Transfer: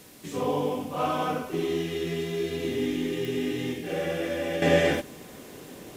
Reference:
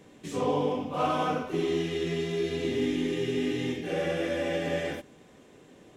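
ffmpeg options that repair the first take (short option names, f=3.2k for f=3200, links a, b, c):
-af "adeclick=t=4,afwtdn=0.0025,asetnsamples=n=441:p=0,asendcmd='4.62 volume volume -9.5dB',volume=0dB"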